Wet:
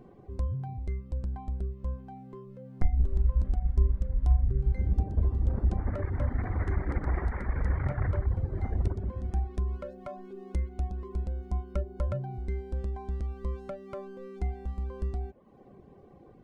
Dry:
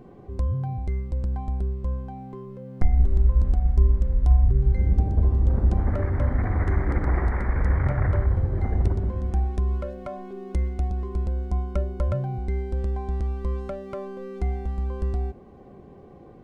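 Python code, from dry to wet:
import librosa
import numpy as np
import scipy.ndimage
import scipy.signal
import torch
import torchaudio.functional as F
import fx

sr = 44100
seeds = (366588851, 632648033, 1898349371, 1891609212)

y = fx.dereverb_blind(x, sr, rt60_s=0.64)
y = y * librosa.db_to_amplitude(-5.0)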